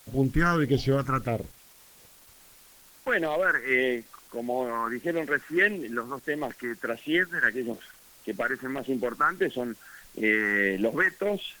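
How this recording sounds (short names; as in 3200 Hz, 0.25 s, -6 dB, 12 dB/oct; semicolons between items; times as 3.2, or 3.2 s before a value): phasing stages 4, 1.6 Hz, lowest notch 560–1400 Hz; a quantiser's noise floor 10-bit, dither triangular; Opus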